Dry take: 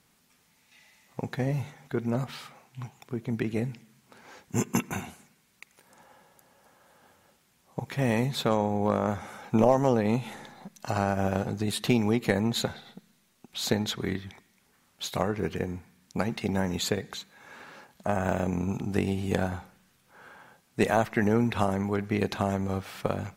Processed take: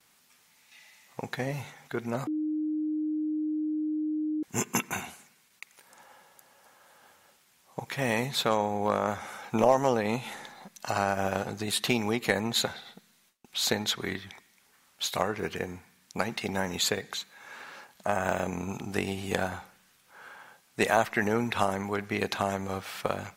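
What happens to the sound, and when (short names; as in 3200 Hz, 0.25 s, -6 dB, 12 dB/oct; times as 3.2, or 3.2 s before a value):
2.27–4.43 bleep 307 Hz -23 dBFS
whole clip: gate with hold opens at -56 dBFS; low shelf 440 Hz -12 dB; gain +4 dB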